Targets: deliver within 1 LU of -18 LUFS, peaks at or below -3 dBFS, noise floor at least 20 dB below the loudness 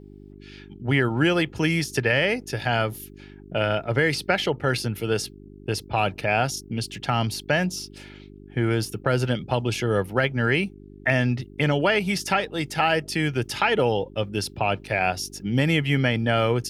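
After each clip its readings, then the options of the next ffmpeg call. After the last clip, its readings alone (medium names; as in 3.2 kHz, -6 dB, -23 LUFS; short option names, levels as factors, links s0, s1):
hum 50 Hz; highest harmonic 400 Hz; hum level -43 dBFS; loudness -24.0 LUFS; peak level -7.5 dBFS; loudness target -18.0 LUFS
-> -af "bandreject=f=50:t=h:w=4,bandreject=f=100:t=h:w=4,bandreject=f=150:t=h:w=4,bandreject=f=200:t=h:w=4,bandreject=f=250:t=h:w=4,bandreject=f=300:t=h:w=4,bandreject=f=350:t=h:w=4,bandreject=f=400:t=h:w=4"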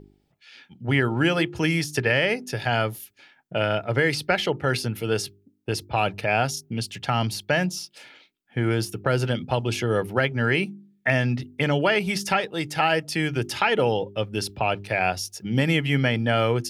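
hum not found; loudness -24.5 LUFS; peak level -7.5 dBFS; loudness target -18.0 LUFS
-> -af "volume=2.11,alimiter=limit=0.708:level=0:latency=1"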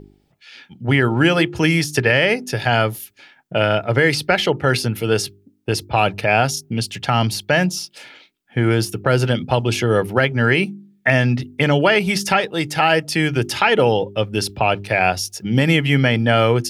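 loudness -18.0 LUFS; peak level -3.0 dBFS; noise floor -58 dBFS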